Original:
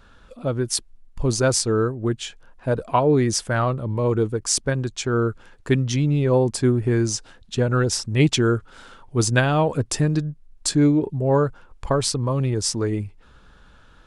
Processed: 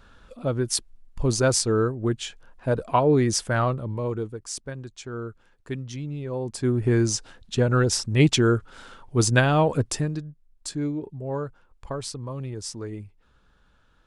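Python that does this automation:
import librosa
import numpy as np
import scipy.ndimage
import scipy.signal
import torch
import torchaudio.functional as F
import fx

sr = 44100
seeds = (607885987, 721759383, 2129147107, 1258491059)

y = fx.gain(x, sr, db=fx.line((3.66, -1.5), (4.48, -12.5), (6.35, -12.5), (6.86, -0.5), (9.81, -0.5), (10.25, -11.0)))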